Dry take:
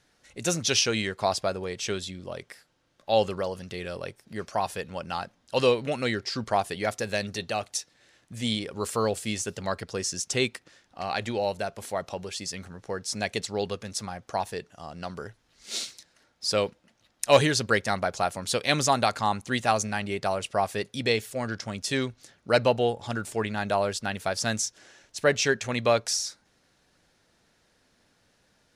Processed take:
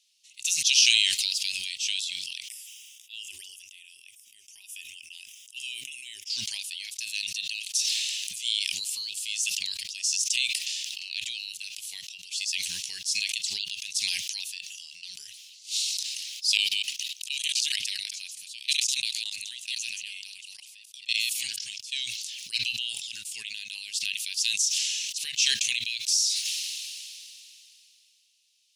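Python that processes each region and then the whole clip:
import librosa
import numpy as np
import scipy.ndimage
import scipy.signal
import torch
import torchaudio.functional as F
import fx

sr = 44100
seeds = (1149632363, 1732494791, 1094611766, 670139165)

y = fx.chain(x, sr, fx.halfwave_gain(db=-3.0),
    fx.peak_eq(hz=490.0, db=-9.0, octaves=1.3),
    fx.notch(hz=1700.0, q=28.0), at=(1.08, 1.7))
y = fx.chain(y, sr, fx.band_shelf(hz=1300.0, db=-8.0, octaves=2.3),
    fx.fixed_phaser(hz=870.0, stages=8), at=(2.48, 6.3))
y = fx.chain(y, sr, fx.reverse_delay(ms=128, wet_db=-3.0),
    fx.level_steps(step_db=22), at=(16.57, 21.92))
y = scipy.signal.sosfilt(scipy.signal.ellip(4, 1.0, 50, 2700.0, 'highpass', fs=sr, output='sos'), y)
y = fx.sustainer(y, sr, db_per_s=21.0)
y = F.gain(torch.from_numpy(y), 3.5).numpy()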